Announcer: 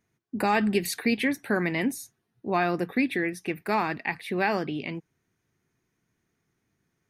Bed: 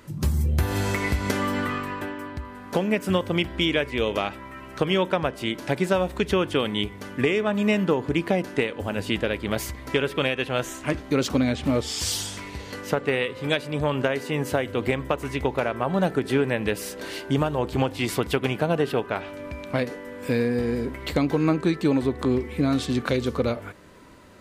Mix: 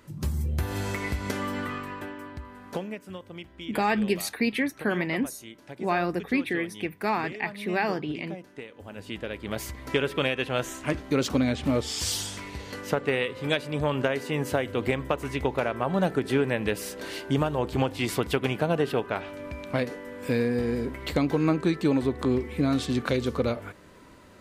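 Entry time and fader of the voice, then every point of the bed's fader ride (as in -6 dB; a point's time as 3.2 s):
3.35 s, -1.0 dB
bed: 2.69 s -5.5 dB
3.05 s -17.5 dB
8.57 s -17.5 dB
9.85 s -2 dB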